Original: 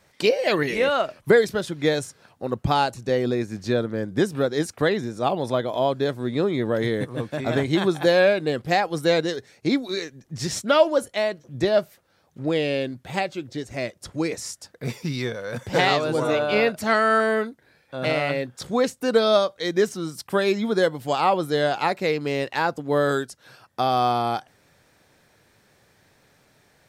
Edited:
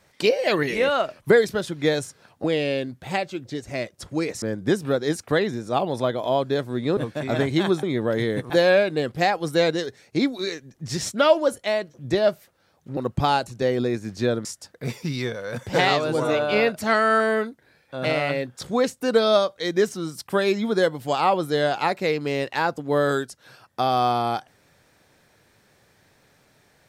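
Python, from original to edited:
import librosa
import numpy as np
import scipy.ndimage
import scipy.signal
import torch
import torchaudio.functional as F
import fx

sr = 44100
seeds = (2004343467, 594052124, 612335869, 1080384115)

y = fx.edit(x, sr, fx.swap(start_s=2.44, length_s=1.48, other_s=12.47, other_length_s=1.98),
    fx.move(start_s=6.47, length_s=0.67, to_s=8.0), tone=tone)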